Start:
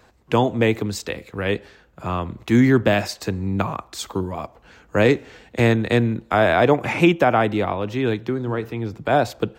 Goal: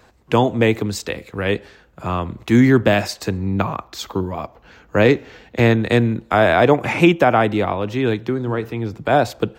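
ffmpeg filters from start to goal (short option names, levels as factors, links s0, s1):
-filter_complex "[0:a]asettb=1/sr,asplit=3[s0][s1][s2];[s0]atrim=end=3.374[s3];[s1]atrim=start=3.37:end=5.83,asetpts=PTS-STARTPTS,afade=t=in:d=0.004:c=qsin,afade=t=out:st=2.456:d=0.004:c=qsin,equalizer=f=8800:t=o:w=0.48:g=-12[s4];[s2]atrim=start=5.826[s5];[s3][s4]acrossfade=d=0.004:c1=hsin:c2=qsin[s6];[s6][s5]acrossfade=d=0.004:c1=qsin:c2=hsin,volume=1.33"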